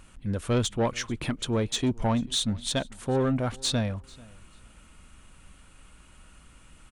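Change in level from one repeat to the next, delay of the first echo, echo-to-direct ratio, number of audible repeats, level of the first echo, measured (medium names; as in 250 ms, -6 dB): no regular repeats, 440 ms, -24.0 dB, 1, -24.0 dB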